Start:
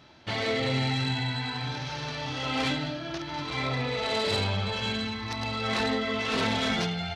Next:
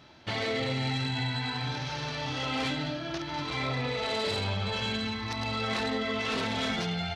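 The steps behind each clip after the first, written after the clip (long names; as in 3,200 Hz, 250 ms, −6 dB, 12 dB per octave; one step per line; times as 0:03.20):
brickwall limiter −22 dBFS, peak gain reduction 6 dB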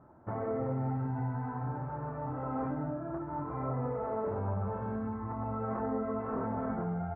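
Butterworth low-pass 1,300 Hz 36 dB per octave
level −1.5 dB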